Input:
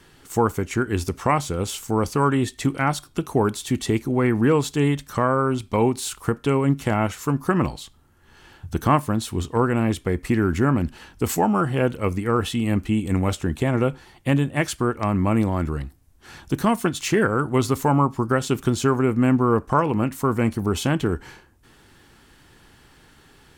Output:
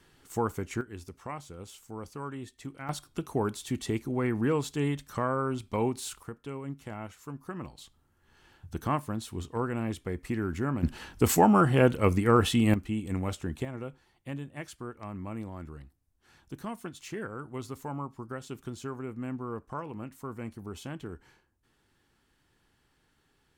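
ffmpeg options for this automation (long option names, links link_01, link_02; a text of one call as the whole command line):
ffmpeg -i in.wav -af "asetnsamples=nb_out_samples=441:pad=0,asendcmd='0.81 volume volume -19dB;2.89 volume volume -9dB;6.23 volume volume -18.5dB;7.78 volume volume -11dB;10.83 volume volume -0.5dB;12.74 volume volume -10dB;13.65 volume volume -18dB',volume=-9.5dB" out.wav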